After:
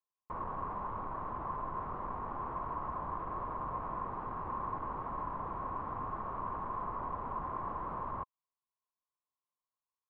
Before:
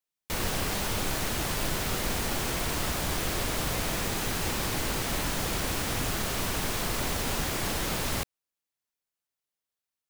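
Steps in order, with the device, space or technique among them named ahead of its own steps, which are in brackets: overdriven synthesiser ladder filter (saturation -28 dBFS, distortion -13 dB; four-pole ladder low-pass 1.1 kHz, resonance 85%); trim +3 dB

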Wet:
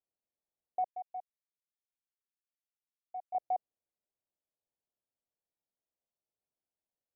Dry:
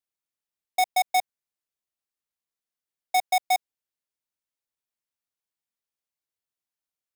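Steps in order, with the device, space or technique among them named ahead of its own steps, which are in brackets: 0.85–3.35 s: pre-emphasis filter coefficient 0.9; overdriven synthesiser ladder filter (saturation -30.5 dBFS, distortion -9 dB; four-pole ladder low-pass 830 Hz, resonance 35%); trim +7.5 dB

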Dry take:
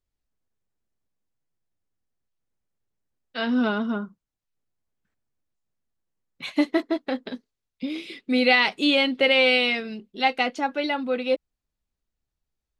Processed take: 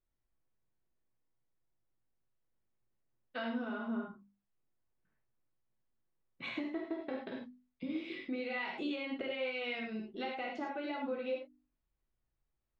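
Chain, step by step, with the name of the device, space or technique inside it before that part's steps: Bessel low-pass 2 kHz, order 2; hum notches 50/100/150/200/250/300 Hz; dynamic bell 7.3 kHz, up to +5 dB, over -56 dBFS, Q 3.4; serial compression, leveller first (compression, threshold -24 dBFS, peak gain reduction 8.5 dB; compression, threshold -35 dBFS, peak gain reduction 12 dB); gated-style reverb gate 130 ms flat, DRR -1.5 dB; trim -4 dB

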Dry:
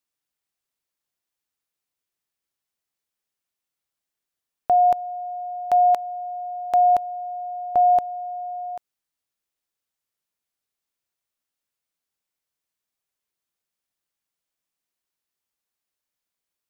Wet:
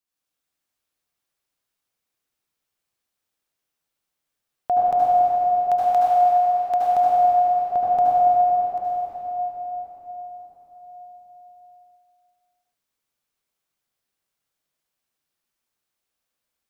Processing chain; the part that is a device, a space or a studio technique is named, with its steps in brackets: cathedral (reverberation RT60 4.7 s, pre-delay 67 ms, DRR -8 dB); trim -3.5 dB

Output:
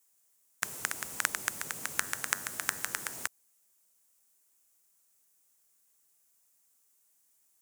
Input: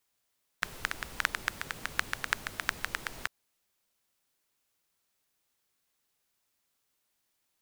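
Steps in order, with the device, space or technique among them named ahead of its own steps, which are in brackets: budget condenser microphone (high-pass 120 Hz 12 dB/octave; resonant high shelf 5.5 kHz +10 dB, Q 1.5); 1.94–3.14 s: de-hum 96.99 Hz, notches 20; trim -1 dB

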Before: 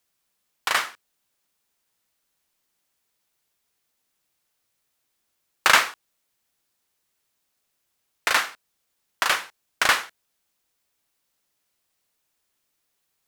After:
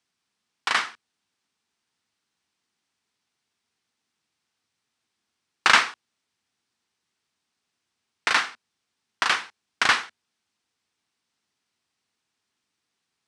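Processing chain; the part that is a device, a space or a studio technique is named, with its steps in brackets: car door speaker (cabinet simulation 88–7900 Hz, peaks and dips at 94 Hz +4 dB, 230 Hz +5 dB, 570 Hz -8 dB, 7 kHz -5 dB)

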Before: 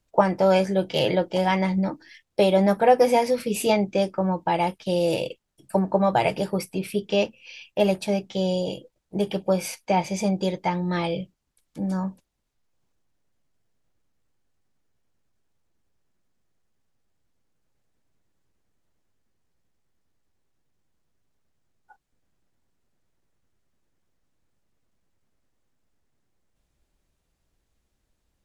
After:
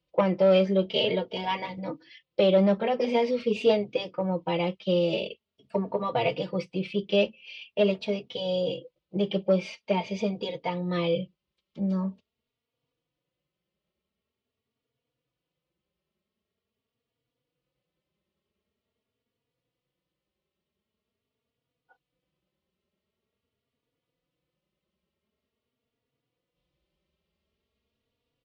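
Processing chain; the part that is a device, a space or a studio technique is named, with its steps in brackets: barber-pole flanger into a guitar amplifier (endless flanger 3.5 ms +0.45 Hz; saturation -13 dBFS, distortion -19 dB; cabinet simulation 84–4400 Hz, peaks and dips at 100 Hz -8 dB, 290 Hz -4 dB, 480 Hz +5 dB, 810 Hz -8 dB, 1.6 kHz -9 dB, 3 kHz +5 dB); trim +1 dB

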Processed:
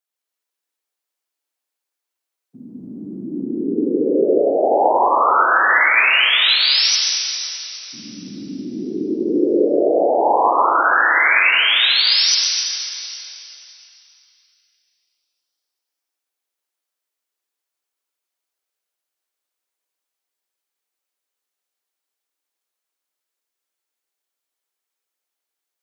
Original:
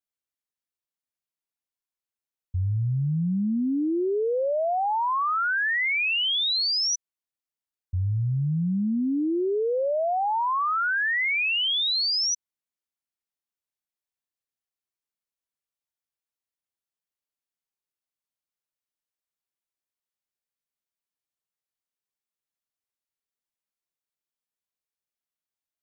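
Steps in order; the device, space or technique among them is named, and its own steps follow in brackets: whispering ghost (whisper effect; high-pass 310 Hz 24 dB/octave; reverberation RT60 3.3 s, pre-delay 89 ms, DRR -2 dB); trim +6 dB

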